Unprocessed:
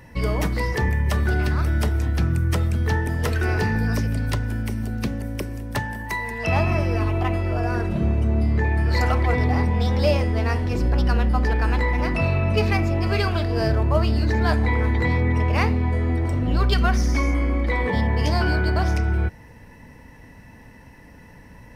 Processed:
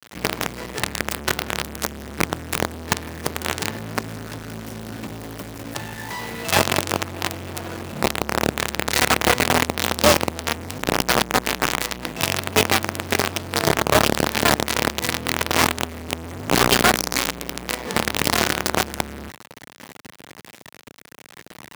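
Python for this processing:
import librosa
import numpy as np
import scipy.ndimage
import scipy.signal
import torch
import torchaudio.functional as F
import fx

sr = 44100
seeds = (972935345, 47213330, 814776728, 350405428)

p1 = fx.schmitt(x, sr, flips_db=-26.5)
p2 = x + (p1 * librosa.db_to_amplitude(-10.0))
p3 = fx.quant_companded(p2, sr, bits=2)
p4 = scipy.signal.sosfilt(scipy.signal.butter(2, 130.0, 'highpass', fs=sr, output='sos'), p3)
y = p4 * librosa.db_to_amplitude(-3.5)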